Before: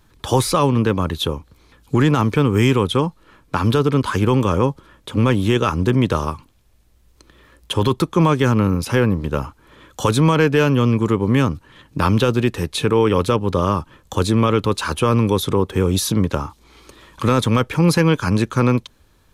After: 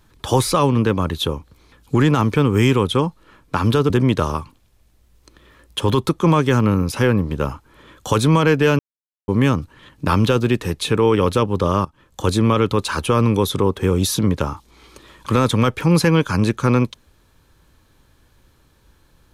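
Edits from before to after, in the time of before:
3.90–5.83 s: delete
10.72–11.21 s: mute
13.78–14.20 s: fade in, from -19.5 dB

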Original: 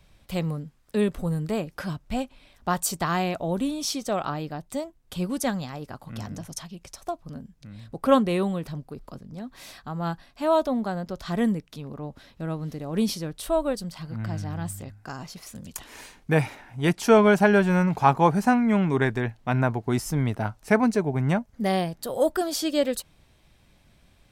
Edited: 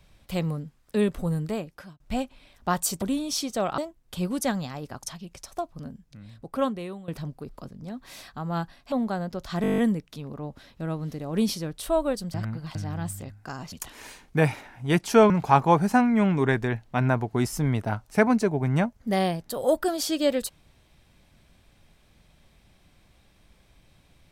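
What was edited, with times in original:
1.38–2.00 s: fade out linear
3.02–3.54 s: delete
4.30–4.77 s: delete
6.02–6.53 s: delete
7.33–8.58 s: fade out, to -18 dB
10.42–10.68 s: delete
11.38 s: stutter 0.02 s, 9 plays
13.94–14.35 s: reverse
15.32–15.66 s: delete
17.24–17.83 s: delete

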